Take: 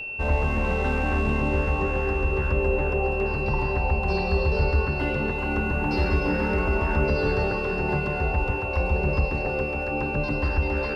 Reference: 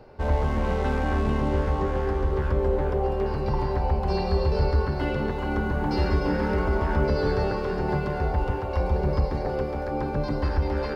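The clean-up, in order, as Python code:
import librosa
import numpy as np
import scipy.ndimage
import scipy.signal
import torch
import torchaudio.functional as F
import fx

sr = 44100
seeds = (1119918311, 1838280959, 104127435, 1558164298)

y = fx.notch(x, sr, hz=2700.0, q=30.0)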